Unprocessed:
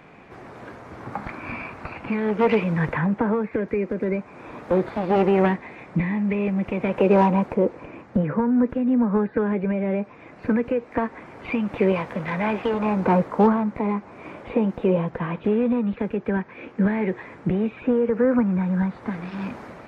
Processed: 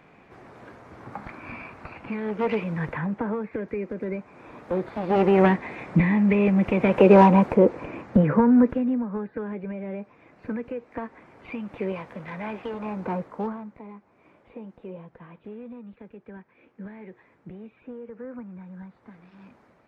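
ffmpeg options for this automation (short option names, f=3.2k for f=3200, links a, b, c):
-af "volume=3.5dB,afade=t=in:st=4.9:d=0.8:silence=0.334965,afade=t=out:st=8.52:d=0.52:silence=0.223872,afade=t=out:st=13.01:d=0.87:silence=0.334965"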